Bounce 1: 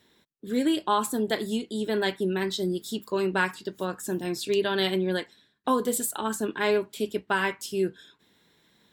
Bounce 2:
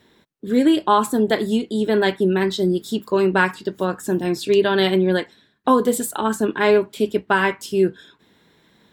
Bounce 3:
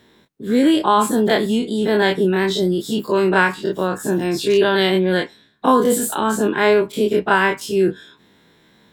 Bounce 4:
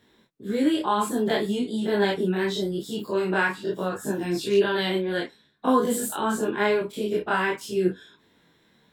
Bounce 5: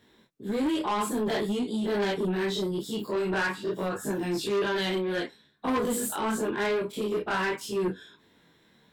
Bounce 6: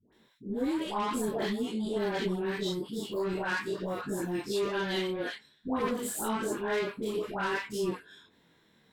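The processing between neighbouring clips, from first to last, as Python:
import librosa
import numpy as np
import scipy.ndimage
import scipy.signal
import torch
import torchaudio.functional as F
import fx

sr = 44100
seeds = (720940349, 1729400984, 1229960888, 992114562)

y1 = fx.high_shelf(x, sr, hz=2900.0, db=-8.0)
y1 = F.gain(torch.from_numpy(y1), 9.0).numpy()
y2 = fx.spec_dilate(y1, sr, span_ms=60)
y2 = F.gain(torch.from_numpy(y2), -1.0).numpy()
y3 = fx.detune_double(y2, sr, cents=17)
y3 = F.gain(torch.from_numpy(y3), -4.0).numpy()
y4 = 10.0 ** (-23.0 / 20.0) * np.tanh(y3 / 10.0 ** (-23.0 / 20.0))
y5 = fx.dispersion(y4, sr, late='highs', ms=127.0, hz=770.0)
y5 = F.gain(torch.from_numpy(y5), -3.5).numpy()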